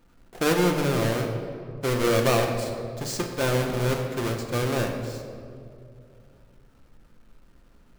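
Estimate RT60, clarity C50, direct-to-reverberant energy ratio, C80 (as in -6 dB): 2.5 s, 5.0 dB, 2.0 dB, 6.0 dB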